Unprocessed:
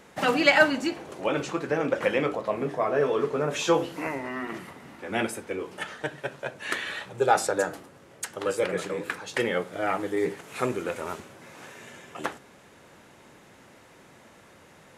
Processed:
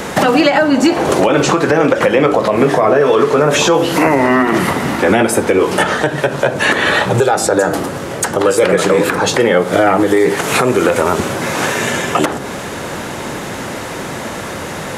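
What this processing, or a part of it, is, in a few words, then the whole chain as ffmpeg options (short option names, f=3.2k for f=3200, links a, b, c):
mastering chain: -filter_complex "[0:a]equalizer=f=2.4k:t=o:w=0.77:g=-2.5,acrossover=split=510|1200[a][b][c];[a]acompressor=threshold=-37dB:ratio=4[d];[b]acompressor=threshold=-38dB:ratio=4[e];[c]acompressor=threshold=-44dB:ratio=4[f];[d][e][f]amix=inputs=3:normalize=0,acompressor=threshold=-37dB:ratio=2.5,alimiter=level_in=30.5dB:limit=-1dB:release=50:level=0:latency=1,volume=-1dB"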